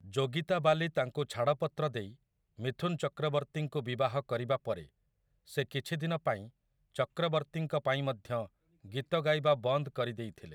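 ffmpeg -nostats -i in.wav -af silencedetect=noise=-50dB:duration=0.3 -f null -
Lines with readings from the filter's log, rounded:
silence_start: 2.13
silence_end: 2.59 | silence_duration: 0.45
silence_start: 4.86
silence_end: 5.48 | silence_duration: 0.62
silence_start: 6.49
silence_end: 6.94 | silence_duration: 0.46
silence_start: 8.47
silence_end: 8.84 | silence_duration: 0.38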